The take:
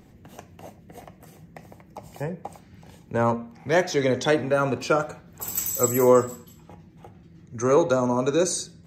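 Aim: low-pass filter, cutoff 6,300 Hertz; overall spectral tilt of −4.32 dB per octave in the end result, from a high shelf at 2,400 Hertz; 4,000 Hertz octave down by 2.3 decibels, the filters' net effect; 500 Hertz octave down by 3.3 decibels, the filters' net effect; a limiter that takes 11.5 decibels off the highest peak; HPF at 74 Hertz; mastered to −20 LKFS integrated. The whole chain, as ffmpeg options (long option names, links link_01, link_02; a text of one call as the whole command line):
ffmpeg -i in.wav -af "highpass=74,lowpass=6300,equalizer=frequency=500:width_type=o:gain=-4,highshelf=frequency=2400:gain=6.5,equalizer=frequency=4000:width_type=o:gain=-8,volume=9.5dB,alimiter=limit=-9dB:level=0:latency=1" out.wav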